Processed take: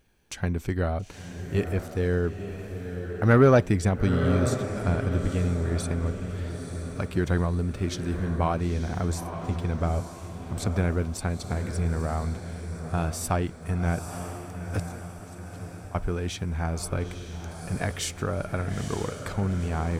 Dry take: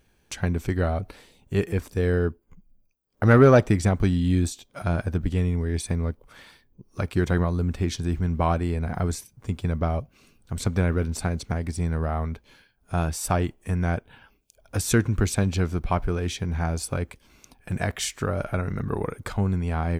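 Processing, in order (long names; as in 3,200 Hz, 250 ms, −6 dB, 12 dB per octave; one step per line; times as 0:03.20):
0:14.79–0:15.95: gate with flip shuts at −19 dBFS, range −24 dB
feedback delay with all-pass diffusion 919 ms, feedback 49%, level −8 dB
level −2.5 dB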